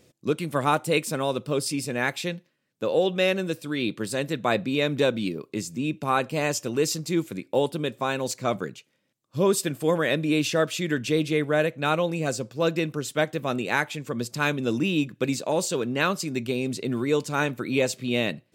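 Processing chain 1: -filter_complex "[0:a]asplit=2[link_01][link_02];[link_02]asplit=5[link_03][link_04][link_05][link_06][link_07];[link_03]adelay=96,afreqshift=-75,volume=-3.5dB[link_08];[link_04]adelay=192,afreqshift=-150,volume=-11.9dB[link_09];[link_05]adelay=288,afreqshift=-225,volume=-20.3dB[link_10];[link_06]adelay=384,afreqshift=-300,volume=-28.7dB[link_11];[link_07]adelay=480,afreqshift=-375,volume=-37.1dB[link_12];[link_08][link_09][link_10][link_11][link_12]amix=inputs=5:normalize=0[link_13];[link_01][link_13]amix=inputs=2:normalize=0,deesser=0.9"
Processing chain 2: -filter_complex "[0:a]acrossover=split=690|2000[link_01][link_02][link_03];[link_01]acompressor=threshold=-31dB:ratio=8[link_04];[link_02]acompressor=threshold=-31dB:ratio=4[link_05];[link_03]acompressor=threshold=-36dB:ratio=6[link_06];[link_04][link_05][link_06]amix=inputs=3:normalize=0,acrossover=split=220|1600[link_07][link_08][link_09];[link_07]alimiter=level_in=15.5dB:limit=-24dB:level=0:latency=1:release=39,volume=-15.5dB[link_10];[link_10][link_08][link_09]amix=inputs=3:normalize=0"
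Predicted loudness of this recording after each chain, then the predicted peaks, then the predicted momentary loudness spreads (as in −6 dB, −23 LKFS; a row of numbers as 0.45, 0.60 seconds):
−25.5, −32.0 LKFS; −7.5, −15.0 dBFS; 6, 5 LU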